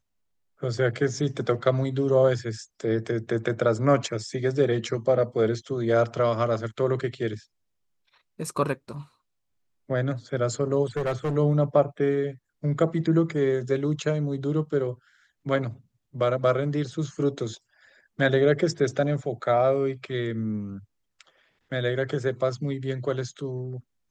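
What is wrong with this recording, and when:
10.96–11.37 s: clipped -22.5 dBFS

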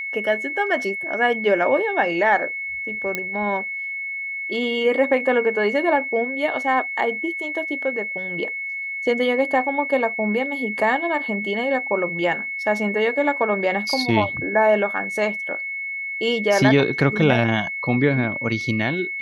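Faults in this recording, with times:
whine 2.2 kHz -26 dBFS
3.15 s: pop -9 dBFS

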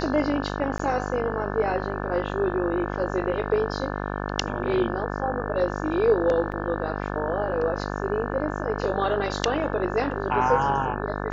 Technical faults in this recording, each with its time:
buzz 50 Hz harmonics 35 -30 dBFS
0.78–0.79 s: dropout 14 ms
6.52–6.53 s: dropout 5.7 ms

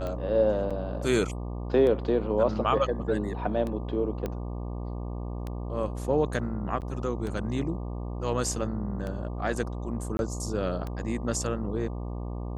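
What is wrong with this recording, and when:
buzz 60 Hz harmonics 20 -34 dBFS
tick 33 1/3 rpm -22 dBFS
0.70–0.71 s: dropout 6.1 ms
4.26 s: pop -19 dBFS
6.81–6.82 s: dropout 8.7 ms
10.17–10.19 s: dropout 21 ms

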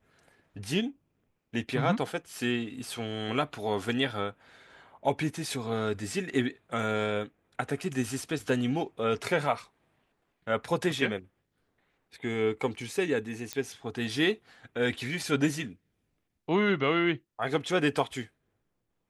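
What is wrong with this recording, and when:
13.53 s: pop -16 dBFS

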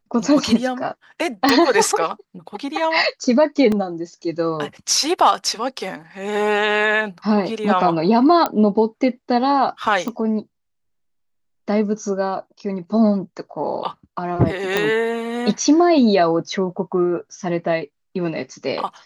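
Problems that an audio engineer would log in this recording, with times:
1.49 s: pop
3.72 s: dropout 2.5 ms
8.46 s: pop -6 dBFS
10.08 s: pop -15 dBFS
14.77 s: pop -5 dBFS

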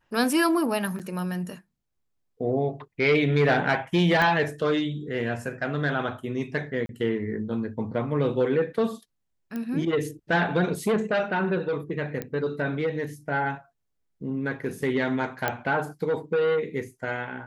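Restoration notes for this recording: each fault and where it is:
0.99–1.00 s: dropout 7.4 ms
4.22 s: pop -12 dBFS
6.86–6.89 s: dropout 32 ms
9.56 s: pop -20 dBFS
12.22 s: pop -17 dBFS
15.48 s: pop -10 dBFS

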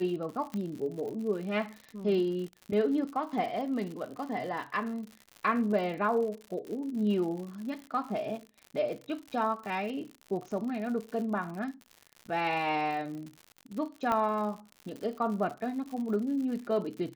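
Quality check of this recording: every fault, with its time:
crackle 95 per s -38 dBFS
0.54 s: pop -23 dBFS
14.12 s: pop -17 dBFS

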